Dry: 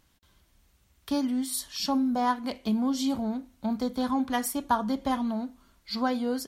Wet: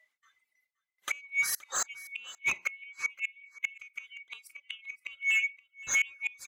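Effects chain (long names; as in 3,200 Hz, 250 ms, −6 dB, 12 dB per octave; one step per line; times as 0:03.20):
neighbouring bands swapped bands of 2,000 Hz
reverb reduction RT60 1.8 s
noise gate with hold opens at −56 dBFS
noise reduction from a noise print of the clip's start 21 dB
harmonic and percussive parts rebalanced harmonic +4 dB
gate with flip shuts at −20 dBFS, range −33 dB
in parallel at −8 dB: hard clipping −31.5 dBFS, distortion −9 dB
on the sum: mid-hump overdrive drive 10 dB, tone 6,200 Hz, clips at −18.5 dBFS
on a send: single-tap delay 522 ms −20 dB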